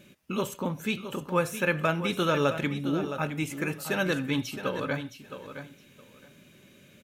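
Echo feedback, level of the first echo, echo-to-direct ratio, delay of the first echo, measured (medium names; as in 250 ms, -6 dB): 17%, -10.5 dB, -10.5 dB, 666 ms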